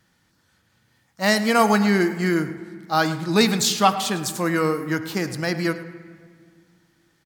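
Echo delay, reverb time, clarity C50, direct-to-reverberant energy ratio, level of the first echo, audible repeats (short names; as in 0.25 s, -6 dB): 0.107 s, 1.9 s, 11.0 dB, 9.0 dB, -15.0 dB, 1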